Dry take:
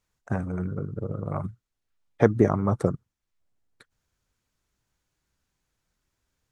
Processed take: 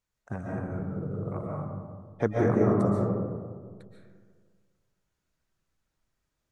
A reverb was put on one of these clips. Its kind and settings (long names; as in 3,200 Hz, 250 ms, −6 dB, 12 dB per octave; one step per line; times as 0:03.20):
comb and all-pass reverb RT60 1.8 s, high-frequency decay 0.3×, pre-delay 100 ms, DRR −4 dB
level −8 dB